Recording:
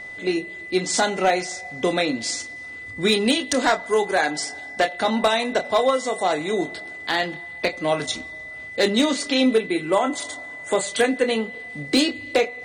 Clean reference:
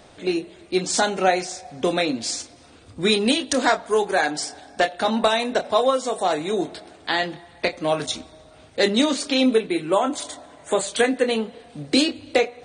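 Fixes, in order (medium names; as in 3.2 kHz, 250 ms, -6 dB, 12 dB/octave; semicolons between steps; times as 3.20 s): clip repair -10.5 dBFS; band-stop 2 kHz, Q 30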